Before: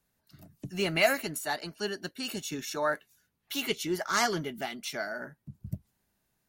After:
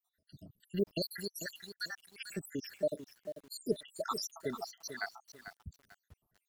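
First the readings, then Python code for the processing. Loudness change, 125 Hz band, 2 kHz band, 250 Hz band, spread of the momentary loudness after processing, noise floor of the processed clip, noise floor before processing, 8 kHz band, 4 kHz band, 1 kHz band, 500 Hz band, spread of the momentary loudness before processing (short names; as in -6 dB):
-8.0 dB, -7.0 dB, -12.5 dB, -6.0 dB, 16 LU, under -85 dBFS, -78 dBFS, -8.5 dB, -8.5 dB, -12.0 dB, -5.5 dB, 16 LU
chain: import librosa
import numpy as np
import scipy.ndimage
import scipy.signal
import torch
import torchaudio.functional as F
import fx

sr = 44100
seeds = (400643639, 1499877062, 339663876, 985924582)

y = fx.spec_dropout(x, sr, seeds[0], share_pct=85)
y = fx.echo_crushed(y, sr, ms=443, feedback_pct=35, bits=9, wet_db=-10.0)
y = y * librosa.db_to_amplitude(1.0)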